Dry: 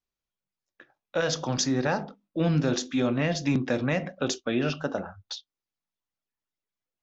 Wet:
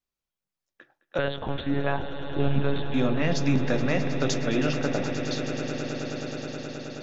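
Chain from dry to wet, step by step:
0:01.18–0:02.94: one-pitch LPC vocoder at 8 kHz 140 Hz
echo that builds up and dies away 106 ms, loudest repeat 8, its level −14 dB

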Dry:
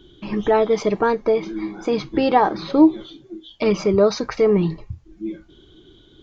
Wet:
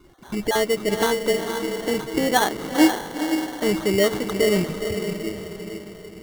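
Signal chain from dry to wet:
time-frequency cells dropped at random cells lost 23%
feedback delay with all-pass diffusion 477 ms, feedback 49%, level −6 dB
sample-rate reduction 2,500 Hz, jitter 0%
level −3.5 dB

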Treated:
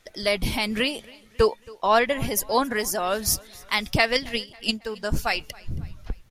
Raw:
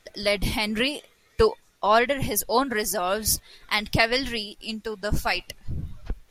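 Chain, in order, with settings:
0:04.15–0:04.82: transient designer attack +11 dB, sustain −12 dB
on a send: repeating echo 273 ms, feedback 49%, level −23.5 dB

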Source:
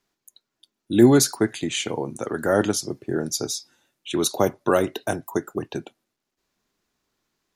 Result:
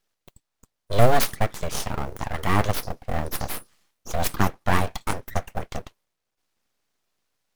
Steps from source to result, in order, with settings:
notch filter 7,000 Hz
full-wave rectification
floating-point word with a short mantissa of 4 bits
level +1 dB

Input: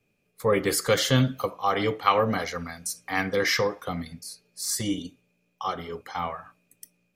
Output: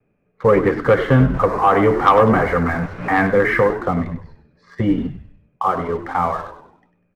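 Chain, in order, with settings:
0:01.34–0:03.27: converter with a step at zero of −30.5 dBFS
low-pass filter 1,800 Hz 24 dB per octave
in parallel at 0 dB: downward compressor, threshold −30 dBFS, peak gain reduction 14.5 dB
on the sum: leveller curve on the samples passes 1
pitch vibrato 0.36 Hz 8.7 cents
echo with shifted repeats 98 ms, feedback 45%, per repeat −79 Hz, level −11.5 dB
level +3.5 dB

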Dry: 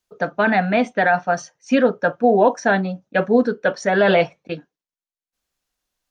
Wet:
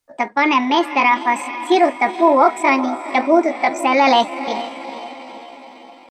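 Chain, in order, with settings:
feedback delay with all-pass diffusion 456 ms, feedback 54%, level −12.5 dB
pitch shifter +5.5 semitones
level +2 dB

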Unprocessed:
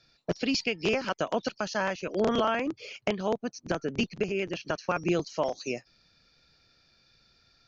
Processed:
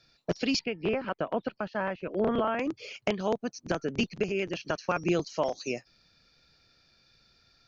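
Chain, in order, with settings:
0:00.59–0:02.59: high-frequency loss of the air 480 metres

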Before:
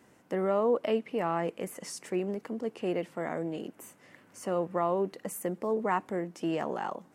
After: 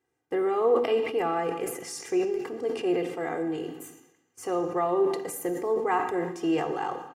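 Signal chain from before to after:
noise gate −49 dBFS, range −21 dB
comb filter 2.5 ms, depth 90%
on a send at −7.5 dB: convolution reverb RT60 1.1 s, pre-delay 3 ms
on the sum: level that may fall only so fast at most 76 dB per second

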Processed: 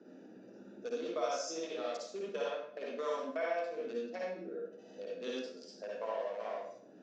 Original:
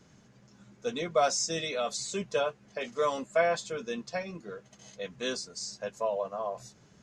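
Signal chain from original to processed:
adaptive Wiener filter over 41 samples
Chebyshev band-pass filter 290–6,100 Hz, order 3
downward compressor 1.5 to 1, threshold −58 dBFS, peak gain reduction 13 dB
convolution reverb RT60 0.60 s, pre-delay 50 ms, DRR −5.5 dB
multiband upward and downward compressor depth 40%

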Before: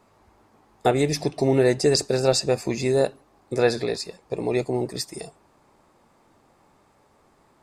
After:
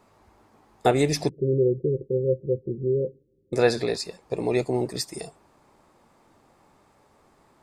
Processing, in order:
0:01.29–0:03.53: Chebyshev low-pass with heavy ripple 540 Hz, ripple 9 dB

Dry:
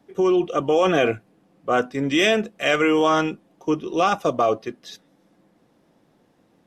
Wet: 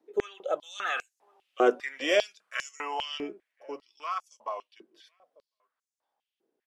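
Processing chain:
source passing by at 0:01.67, 32 m/s, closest 23 metres
slap from a distant wall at 180 metres, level −27 dB
high-pass on a step sequencer 5 Hz 370–6,600 Hz
level −7 dB

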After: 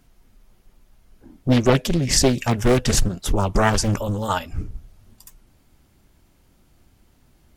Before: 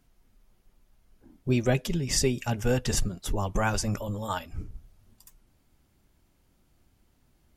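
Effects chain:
highs frequency-modulated by the lows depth 0.79 ms
level +8.5 dB

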